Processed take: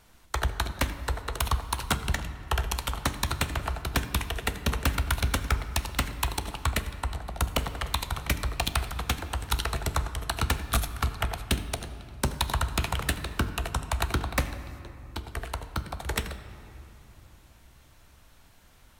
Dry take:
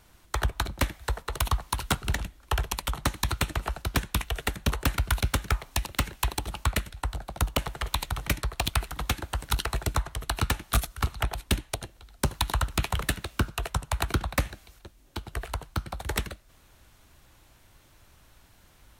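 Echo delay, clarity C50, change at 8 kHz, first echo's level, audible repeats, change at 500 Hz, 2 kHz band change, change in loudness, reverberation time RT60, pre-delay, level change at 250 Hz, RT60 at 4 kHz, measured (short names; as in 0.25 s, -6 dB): none, 11.5 dB, -0.5 dB, none, none, 0.0 dB, +0.5 dB, 0.0 dB, 2.9 s, 4 ms, 0.0 dB, 1.7 s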